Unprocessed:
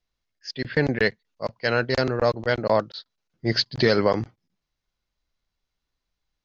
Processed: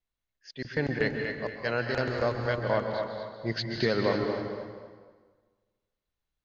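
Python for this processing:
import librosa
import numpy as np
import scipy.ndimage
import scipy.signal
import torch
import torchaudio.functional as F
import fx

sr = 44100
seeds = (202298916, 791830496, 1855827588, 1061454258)

y = fx.peak_eq(x, sr, hz=5100.0, db=-7.0, octaves=0.46)
y = fx.echo_feedback(y, sr, ms=238, feedback_pct=27, wet_db=-7.0)
y = fx.rev_plate(y, sr, seeds[0], rt60_s=1.5, hf_ratio=0.8, predelay_ms=120, drr_db=4.5)
y = y * librosa.db_to_amplitude(-7.5)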